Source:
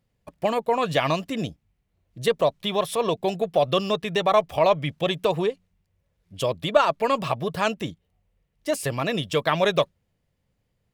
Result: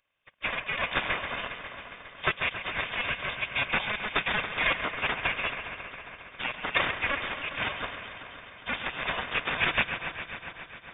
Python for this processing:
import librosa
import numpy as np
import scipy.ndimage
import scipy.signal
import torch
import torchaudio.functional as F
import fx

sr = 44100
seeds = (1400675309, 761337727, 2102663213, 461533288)

p1 = fx.lower_of_two(x, sr, delay_ms=2.0)
p2 = scipy.signal.sosfilt(scipy.signal.butter(2, 51.0, 'highpass', fs=sr, output='sos'), p1)
p3 = fx.spec_gate(p2, sr, threshold_db=-15, keep='weak')
p4 = fx.low_shelf_res(p3, sr, hz=770.0, db=-7.0, q=1.5)
p5 = p4 + fx.echo_thinned(p4, sr, ms=136, feedback_pct=82, hz=420.0, wet_db=-9.5, dry=0)
p6 = np.repeat(p5[::8], 8)[:len(p5)]
p7 = fx.freq_invert(p6, sr, carrier_hz=3600)
y = F.gain(torch.from_numpy(p7), 4.5).numpy()